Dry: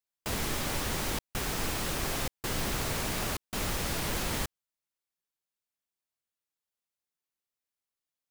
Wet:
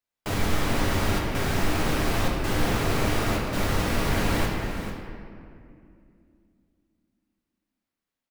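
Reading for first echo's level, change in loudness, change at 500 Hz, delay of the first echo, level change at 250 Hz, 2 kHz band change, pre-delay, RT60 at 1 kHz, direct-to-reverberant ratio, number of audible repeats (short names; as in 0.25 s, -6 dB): -11.0 dB, +6.0 dB, +9.0 dB, 0.445 s, +10.5 dB, +7.0 dB, 7 ms, 2.2 s, -3.0 dB, 1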